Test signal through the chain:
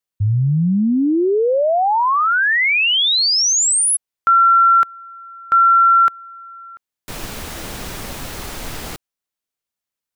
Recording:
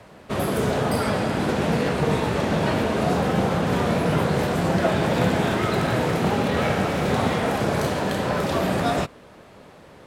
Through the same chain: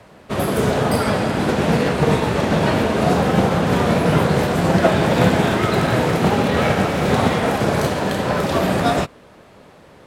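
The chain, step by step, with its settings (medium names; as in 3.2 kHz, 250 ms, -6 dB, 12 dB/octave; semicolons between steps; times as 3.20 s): upward expansion 1.5:1, over -29 dBFS; trim +7 dB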